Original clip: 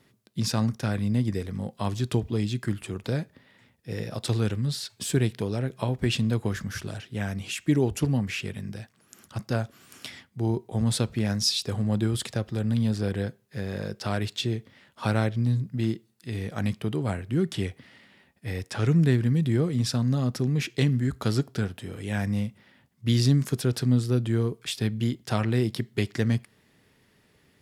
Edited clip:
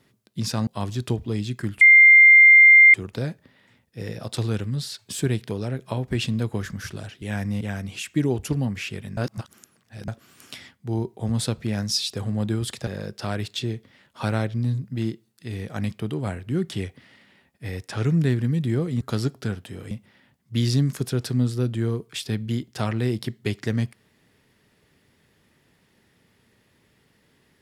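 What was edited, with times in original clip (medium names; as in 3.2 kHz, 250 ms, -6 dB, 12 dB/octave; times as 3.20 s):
0.67–1.71 s: delete
2.85 s: add tone 2.1 kHz -7.5 dBFS 1.13 s
8.69–9.60 s: reverse
12.39–13.69 s: delete
19.83–21.14 s: delete
22.04–22.43 s: move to 7.13 s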